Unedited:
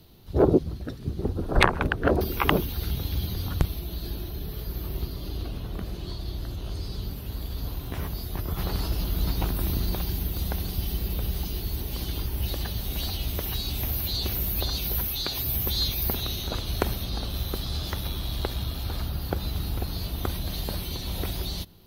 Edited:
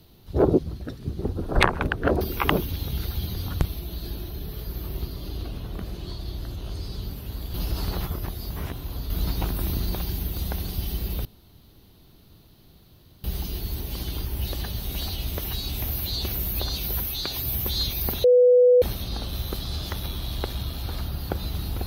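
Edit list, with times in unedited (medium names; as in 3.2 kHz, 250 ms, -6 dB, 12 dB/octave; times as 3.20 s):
2.71–3.17 s: reverse
7.54–9.10 s: reverse
11.25 s: insert room tone 1.99 s
16.25–16.83 s: bleep 495 Hz -12 dBFS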